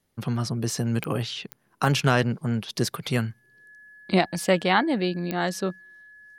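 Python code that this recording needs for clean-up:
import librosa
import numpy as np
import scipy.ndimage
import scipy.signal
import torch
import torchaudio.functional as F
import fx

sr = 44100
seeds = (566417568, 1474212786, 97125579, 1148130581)

y = fx.fix_declick_ar(x, sr, threshold=10.0)
y = fx.notch(y, sr, hz=1700.0, q=30.0)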